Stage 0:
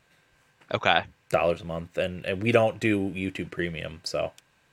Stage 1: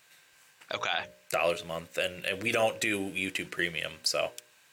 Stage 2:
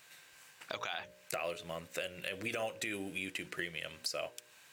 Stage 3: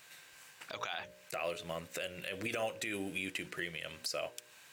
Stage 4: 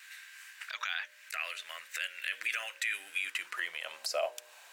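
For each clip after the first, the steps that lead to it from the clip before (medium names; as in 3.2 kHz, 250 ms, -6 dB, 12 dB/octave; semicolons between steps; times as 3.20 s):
tilt EQ +3.5 dB/octave; de-hum 60.72 Hz, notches 10; peak limiter -16 dBFS, peak gain reduction 13.5 dB
compression 2.5:1, threshold -42 dBFS, peak gain reduction 13.5 dB; short-mantissa float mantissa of 4-bit; trim +1.5 dB
peak limiter -28 dBFS, peak gain reduction 9.5 dB; trim +2 dB
vibrato 0.77 Hz 9 cents; high-pass sweep 1.7 kHz -> 690 Hz, 2.97–4.11 s; trim +2 dB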